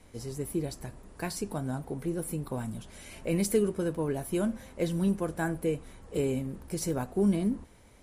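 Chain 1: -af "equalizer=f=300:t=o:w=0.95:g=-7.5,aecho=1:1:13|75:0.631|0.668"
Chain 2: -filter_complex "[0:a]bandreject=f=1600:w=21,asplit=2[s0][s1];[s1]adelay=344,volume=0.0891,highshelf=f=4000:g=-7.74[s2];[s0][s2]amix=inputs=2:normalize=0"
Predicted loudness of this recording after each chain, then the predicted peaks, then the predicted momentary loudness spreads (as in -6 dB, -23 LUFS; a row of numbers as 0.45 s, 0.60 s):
-32.5 LUFS, -32.0 LUFS; -14.0 dBFS, -14.0 dBFS; 10 LU, 12 LU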